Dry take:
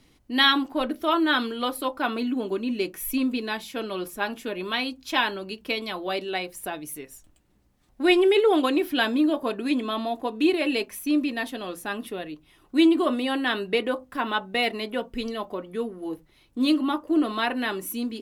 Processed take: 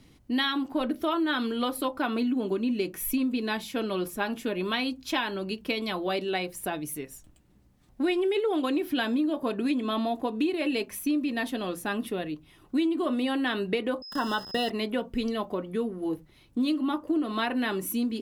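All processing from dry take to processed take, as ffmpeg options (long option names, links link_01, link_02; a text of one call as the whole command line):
ffmpeg -i in.wav -filter_complex "[0:a]asettb=1/sr,asplit=3[link_01][link_02][link_03];[link_01]atrim=end=14.024[link_04];[link_02]atrim=start=14.02:end=14.7,asetpts=PTS-STARTPTS,afade=type=in:duration=0.004:curve=qsin,afade=type=out:start_time=0.676:duration=0.004:curve=qsin,aeval=exprs='val(0)*gte(abs(val(0)),0.015)':channel_layout=same,aeval=exprs='val(0)+0.01*sin(2*PI*5100*n/s)':channel_layout=same,asuperstop=centerf=2300:order=12:qfactor=3.2[link_05];[link_03]atrim=start=14.696[link_06];[link_04][link_05]acrossfade=duration=0.004:curve1=hsin:curve2=qsin[link_07];[link_07][link_06]acrossfade=duration=0.004:curve1=qsin:curve2=hsin,equalizer=frequency=130:width_type=o:width=2.4:gain=6.5,acompressor=threshold=-24dB:ratio=6" out.wav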